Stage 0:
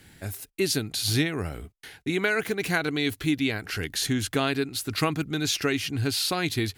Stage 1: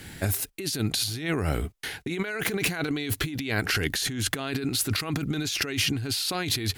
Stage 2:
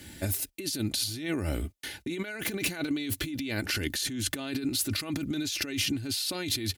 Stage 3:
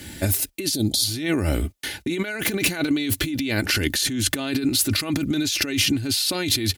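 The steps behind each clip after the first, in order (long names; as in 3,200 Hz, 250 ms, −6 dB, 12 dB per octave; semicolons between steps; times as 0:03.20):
compressor whose output falls as the input rises −33 dBFS, ratio −1; level +4.5 dB
high-pass filter 49 Hz; parametric band 1,200 Hz −6.5 dB 1.7 octaves; comb filter 3.4 ms, depth 50%; level −3 dB
gain on a spectral selection 0:00.75–0:01.04, 850–3,100 Hz −17 dB; level +8.5 dB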